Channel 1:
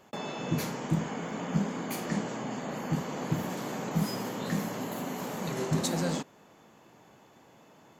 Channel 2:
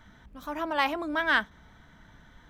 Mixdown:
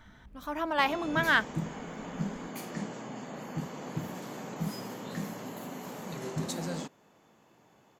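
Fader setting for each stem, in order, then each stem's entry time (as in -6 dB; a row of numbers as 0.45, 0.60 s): -5.5, -0.5 dB; 0.65, 0.00 s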